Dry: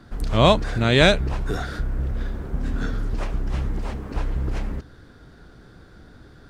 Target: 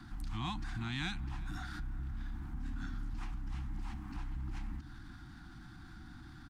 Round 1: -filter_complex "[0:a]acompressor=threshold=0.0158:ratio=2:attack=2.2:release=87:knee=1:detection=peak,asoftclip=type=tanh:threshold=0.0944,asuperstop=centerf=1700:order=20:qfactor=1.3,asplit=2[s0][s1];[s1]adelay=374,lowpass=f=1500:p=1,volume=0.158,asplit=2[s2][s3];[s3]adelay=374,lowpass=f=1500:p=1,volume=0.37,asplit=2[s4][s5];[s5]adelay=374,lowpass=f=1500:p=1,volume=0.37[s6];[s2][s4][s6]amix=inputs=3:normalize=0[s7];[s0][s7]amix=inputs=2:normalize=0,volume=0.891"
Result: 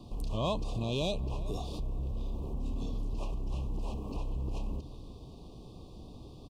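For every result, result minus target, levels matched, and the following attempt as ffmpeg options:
500 Hz band +16.5 dB; compression: peak gain reduction -5.5 dB
-filter_complex "[0:a]acompressor=threshold=0.0158:ratio=2:attack=2.2:release=87:knee=1:detection=peak,asoftclip=type=tanh:threshold=0.0944,asuperstop=centerf=500:order=20:qfactor=1.3,asplit=2[s0][s1];[s1]adelay=374,lowpass=f=1500:p=1,volume=0.158,asplit=2[s2][s3];[s3]adelay=374,lowpass=f=1500:p=1,volume=0.37,asplit=2[s4][s5];[s5]adelay=374,lowpass=f=1500:p=1,volume=0.37[s6];[s2][s4][s6]amix=inputs=3:normalize=0[s7];[s0][s7]amix=inputs=2:normalize=0,volume=0.891"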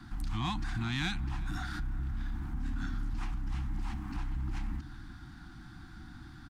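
compression: peak gain reduction -5.5 dB
-filter_complex "[0:a]acompressor=threshold=0.00447:ratio=2:attack=2.2:release=87:knee=1:detection=peak,asoftclip=type=tanh:threshold=0.0944,asuperstop=centerf=500:order=20:qfactor=1.3,asplit=2[s0][s1];[s1]adelay=374,lowpass=f=1500:p=1,volume=0.158,asplit=2[s2][s3];[s3]adelay=374,lowpass=f=1500:p=1,volume=0.37,asplit=2[s4][s5];[s5]adelay=374,lowpass=f=1500:p=1,volume=0.37[s6];[s2][s4][s6]amix=inputs=3:normalize=0[s7];[s0][s7]amix=inputs=2:normalize=0,volume=0.891"

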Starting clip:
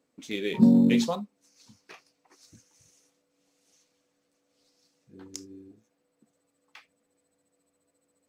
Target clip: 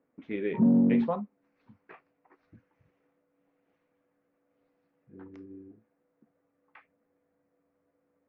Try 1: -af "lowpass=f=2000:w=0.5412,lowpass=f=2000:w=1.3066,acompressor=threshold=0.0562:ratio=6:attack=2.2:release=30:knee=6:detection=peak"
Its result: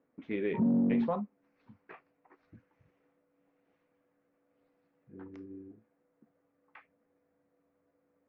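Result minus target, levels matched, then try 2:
compression: peak gain reduction +6 dB
-af "lowpass=f=2000:w=0.5412,lowpass=f=2000:w=1.3066,acompressor=threshold=0.133:ratio=6:attack=2.2:release=30:knee=6:detection=peak"

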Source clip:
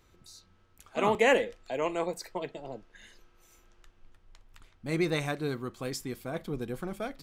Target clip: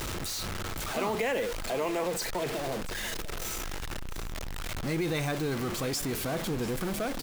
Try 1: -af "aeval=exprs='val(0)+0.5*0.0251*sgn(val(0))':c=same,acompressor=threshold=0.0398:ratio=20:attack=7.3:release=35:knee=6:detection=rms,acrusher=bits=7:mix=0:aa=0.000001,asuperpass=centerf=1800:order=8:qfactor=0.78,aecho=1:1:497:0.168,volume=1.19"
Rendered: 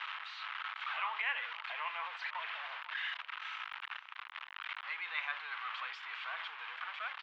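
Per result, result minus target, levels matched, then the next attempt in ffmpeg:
2 kHz band +7.5 dB; echo 196 ms early
-af "aeval=exprs='val(0)+0.5*0.0251*sgn(val(0))':c=same,acompressor=threshold=0.0398:ratio=20:attack=7.3:release=35:knee=6:detection=rms,acrusher=bits=7:mix=0:aa=0.000001,aecho=1:1:497:0.168,volume=1.19"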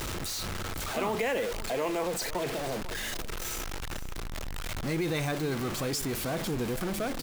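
echo 196 ms early
-af "aeval=exprs='val(0)+0.5*0.0251*sgn(val(0))':c=same,acompressor=threshold=0.0398:ratio=20:attack=7.3:release=35:knee=6:detection=rms,acrusher=bits=7:mix=0:aa=0.000001,aecho=1:1:693:0.168,volume=1.19"

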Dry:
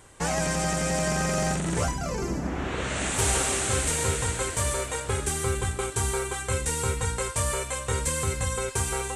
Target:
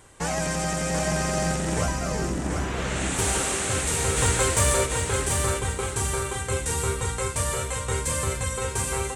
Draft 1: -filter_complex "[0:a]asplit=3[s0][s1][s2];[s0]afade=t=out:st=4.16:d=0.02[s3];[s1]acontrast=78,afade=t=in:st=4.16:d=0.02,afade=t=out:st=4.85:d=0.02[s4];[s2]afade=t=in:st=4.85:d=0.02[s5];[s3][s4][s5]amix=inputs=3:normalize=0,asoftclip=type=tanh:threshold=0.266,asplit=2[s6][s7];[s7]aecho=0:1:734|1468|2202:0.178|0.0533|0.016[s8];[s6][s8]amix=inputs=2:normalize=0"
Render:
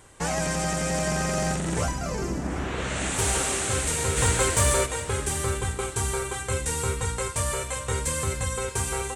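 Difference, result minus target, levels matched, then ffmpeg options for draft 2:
echo-to-direct -9.5 dB
-filter_complex "[0:a]asplit=3[s0][s1][s2];[s0]afade=t=out:st=4.16:d=0.02[s3];[s1]acontrast=78,afade=t=in:st=4.16:d=0.02,afade=t=out:st=4.85:d=0.02[s4];[s2]afade=t=in:st=4.85:d=0.02[s5];[s3][s4][s5]amix=inputs=3:normalize=0,asoftclip=type=tanh:threshold=0.266,asplit=2[s6][s7];[s7]aecho=0:1:734|1468|2202|2936:0.531|0.159|0.0478|0.0143[s8];[s6][s8]amix=inputs=2:normalize=0"

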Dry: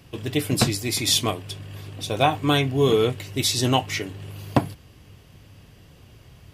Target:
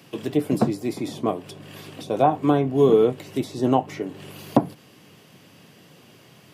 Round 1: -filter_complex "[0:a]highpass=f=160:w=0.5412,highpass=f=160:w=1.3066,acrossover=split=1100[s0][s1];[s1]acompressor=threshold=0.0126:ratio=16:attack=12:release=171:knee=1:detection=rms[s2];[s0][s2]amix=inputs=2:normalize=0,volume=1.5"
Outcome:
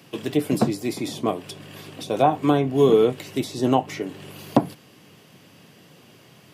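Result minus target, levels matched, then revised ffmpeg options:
compression: peak gain reduction -5.5 dB
-filter_complex "[0:a]highpass=f=160:w=0.5412,highpass=f=160:w=1.3066,acrossover=split=1100[s0][s1];[s1]acompressor=threshold=0.00631:ratio=16:attack=12:release=171:knee=1:detection=rms[s2];[s0][s2]amix=inputs=2:normalize=0,volume=1.5"

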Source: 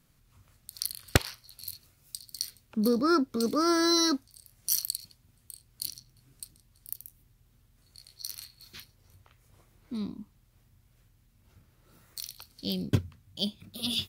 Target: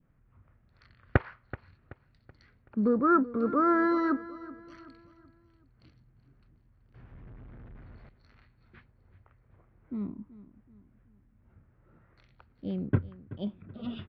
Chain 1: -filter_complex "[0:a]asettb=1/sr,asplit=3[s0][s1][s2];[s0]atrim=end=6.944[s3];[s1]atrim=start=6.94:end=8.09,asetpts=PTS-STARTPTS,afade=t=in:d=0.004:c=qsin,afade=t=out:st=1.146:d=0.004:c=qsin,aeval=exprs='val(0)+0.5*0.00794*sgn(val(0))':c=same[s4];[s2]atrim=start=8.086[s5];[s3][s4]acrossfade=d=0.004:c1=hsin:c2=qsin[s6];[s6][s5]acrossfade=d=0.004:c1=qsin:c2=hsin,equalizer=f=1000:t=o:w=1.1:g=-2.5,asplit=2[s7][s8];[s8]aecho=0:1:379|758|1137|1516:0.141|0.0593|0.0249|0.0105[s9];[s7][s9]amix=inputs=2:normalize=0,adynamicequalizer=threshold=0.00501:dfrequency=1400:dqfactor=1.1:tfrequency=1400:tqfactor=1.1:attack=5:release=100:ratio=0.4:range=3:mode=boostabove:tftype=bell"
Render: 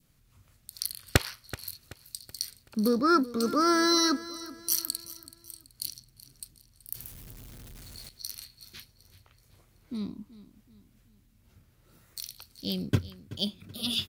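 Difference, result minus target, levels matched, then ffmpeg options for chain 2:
2 kHz band +3.0 dB
-filter_complex "[0:a]asettb=1/sr,asplit=3[s0][s1][s2];[s0]atrim=end=6.944[s3];[s1]atrim=start=6.94:end=8.09,asetpts=PTS-STARTPTS,afade=t=in:d=0.004:c=qsin,afade=t=out:st=1.146:d=0.004:c=qsin,aeval=exprs='val(0)+0.5*0.00794*sgn(val(0))':c=same[s4];[s2]atrim=start=8.086[s5];[s3][s4]acrossfade=d=0.004:c1=hsin:c2=qsin[s6];[s6][s5]acrossfade=d=0.004:c1=qsin:c2=hsin,equalizer=f=1000:t=o:w=1.1:g=-2.5,asplit=2[s7][s8];[s8]aecho=0:1:379|758|1137|1516:0.141|0.0593|0.0249|0.0105[s9];[s7][s9]amix=inputs=2:normalize=0,adynamicequalizer=threshold=0.00501:dfrequency=1400:dqfactor=1.1:tfrequency=1400:tqfactor=1.1:attack=5:release=100:ratio=0.4:range=3:mode=boostabove:tftype=bell,lowpass=f=1800:w=0.5412,lowpass=f=1800:w=1.3066"

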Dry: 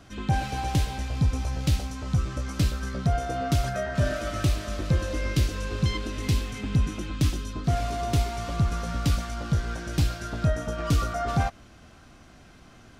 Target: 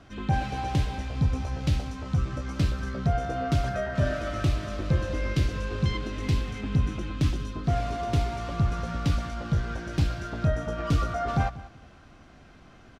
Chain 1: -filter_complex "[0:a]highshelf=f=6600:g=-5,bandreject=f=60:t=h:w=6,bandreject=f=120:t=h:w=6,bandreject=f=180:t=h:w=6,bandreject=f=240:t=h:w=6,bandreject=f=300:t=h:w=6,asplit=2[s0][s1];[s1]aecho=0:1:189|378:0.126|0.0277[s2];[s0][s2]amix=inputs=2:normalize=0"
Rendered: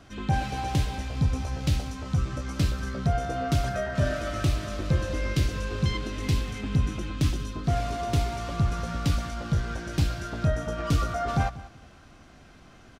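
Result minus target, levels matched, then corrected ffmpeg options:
8 kHz band +5.0 dB
-filter_complex "[0:a]highshelf=f=6600:g=-15.5,bandreject=f=60:t=h:w=6,bandreject=f=120:t=h:w=6,bandreject=f=180:t=h:w=6,bandreject=f=240:t=h:w=6,bandreject=f=300:t=h:w=6,asplit=2[s0][s1];[s1]aecho=0:1:189|378:0.126|0.0277[s2];[s0][s2]amix=inputs=2:normalize=0"

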